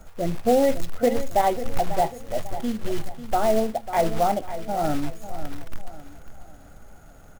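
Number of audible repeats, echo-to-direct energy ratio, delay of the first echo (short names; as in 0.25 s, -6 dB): 3, -12.0 dB, 0.545 s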